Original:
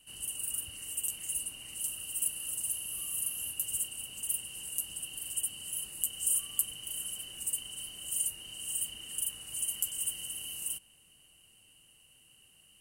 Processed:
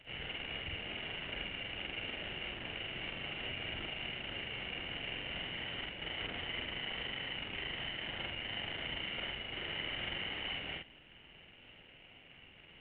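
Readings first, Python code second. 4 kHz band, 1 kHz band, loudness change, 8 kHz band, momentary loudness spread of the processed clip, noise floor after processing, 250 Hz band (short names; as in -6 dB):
+3.0 dB, n/a, -6.0 dB, under -40 dB, 18 LU, -59 dBFS, +11.0 dB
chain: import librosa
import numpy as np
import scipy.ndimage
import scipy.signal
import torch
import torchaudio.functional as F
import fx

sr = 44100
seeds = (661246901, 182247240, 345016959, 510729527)

y = fx.cvsd(x, sr, bps=16000)
y = fx.peak_eq(y, sr, hz=1100.0, db=-8.5, octaves=0.62)
y = fx.doubler(y, sr, ms=47.0, db=-2.0)
y = y * librosa.db_to_amplitude(5.0)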